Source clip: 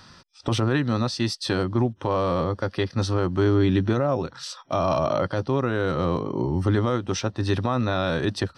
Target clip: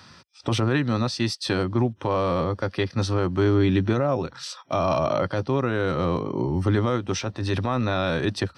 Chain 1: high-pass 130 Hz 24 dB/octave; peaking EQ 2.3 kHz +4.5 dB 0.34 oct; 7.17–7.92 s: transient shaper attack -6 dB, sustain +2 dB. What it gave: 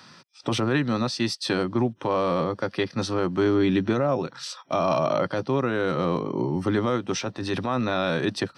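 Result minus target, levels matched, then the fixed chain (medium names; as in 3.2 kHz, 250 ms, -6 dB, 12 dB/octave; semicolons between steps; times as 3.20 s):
125 Hz band -4.5 dB
high-pass 62 Hz 24 dB/octave; peaking EQ 2.3 kHz +4.5 dB 0.34 oct; 7.17–7.92 s: transient shaper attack -6 dB, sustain +2 dB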